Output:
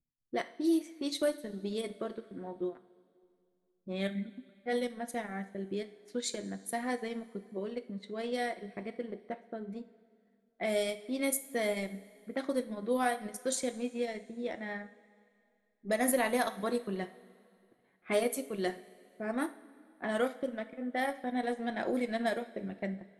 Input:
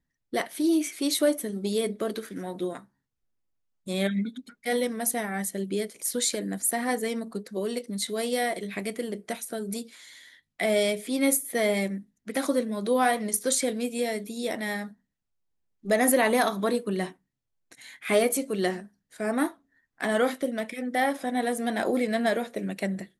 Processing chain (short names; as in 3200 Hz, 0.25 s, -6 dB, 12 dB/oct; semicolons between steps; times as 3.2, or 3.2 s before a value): low-pass opened by the level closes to 490 Hz, open at -20 dBFS; transient shaper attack +1 dB, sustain -12 dB; two-slope reverb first 0.41 s, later 2.5 s, from -15 dB, DRR 9.5 dB; gain -7.5 dB